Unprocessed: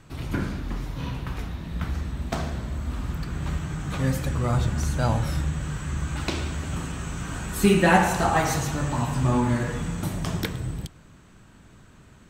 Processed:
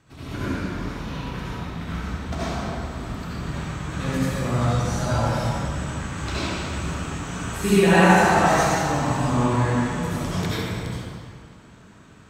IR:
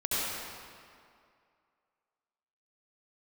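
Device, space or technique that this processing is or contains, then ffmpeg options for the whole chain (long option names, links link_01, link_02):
swimming-pool hall: -filter_complex "[1:a]atrim=start_sample=2205[link_01];[0:a][link_01]afir=irnorm=-1:irlink=0,highpass=frequency=110:poles=1,highshelf=frequency=5700:gain=-6,equalizer=frequency=6200:width=0.91:gain=4,volume=-5dB"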